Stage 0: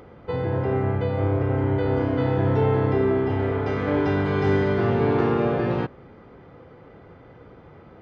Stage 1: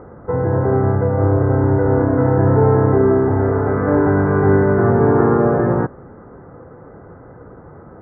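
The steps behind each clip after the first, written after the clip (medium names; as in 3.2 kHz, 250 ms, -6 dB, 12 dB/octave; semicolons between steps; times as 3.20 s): steep low-pass 1.7 kHz 48 dB/octave; trim +7.5 dB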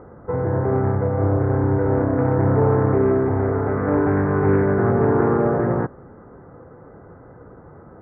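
loudspeaker Doppler distortion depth 0.26 ms; trim -4 dB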